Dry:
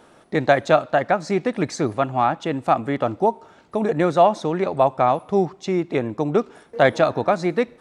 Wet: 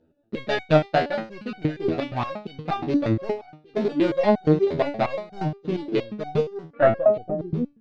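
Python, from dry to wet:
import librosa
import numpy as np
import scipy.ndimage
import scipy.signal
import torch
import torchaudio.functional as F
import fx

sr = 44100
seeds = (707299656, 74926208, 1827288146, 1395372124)

p1 = fx.wiener(x, sr, points=41)
p2 = fx.peak_eq(p1, sr, hz=1100.0, db=-7.0, octaves=1.3)
p3 = fx.leveller(p2, sr, passes=2)
p4 = fx.filter_sweep_lowpass(p3, sr, from_hz=4500.0, to_hz=150.0, start_s=6.46, end_s=7.61, q=1.8)
p5 = p4 + fx.echo_single(p4, sr, ms=1189, db=-18.5, dry=0)
p6 = fx.resonator_held(p5, sr, hz=8.5, low_hz=81.0, high_hz=750.0)
y = p6 * 10.0 ** (5.5 / 20.0)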